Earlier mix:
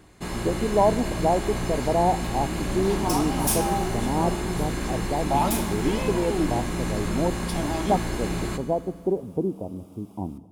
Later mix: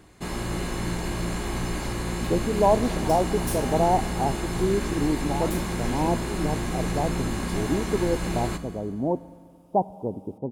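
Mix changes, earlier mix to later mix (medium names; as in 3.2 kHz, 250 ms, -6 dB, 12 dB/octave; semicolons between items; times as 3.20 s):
speech: entry +1.85 s; second sound -9.5 dB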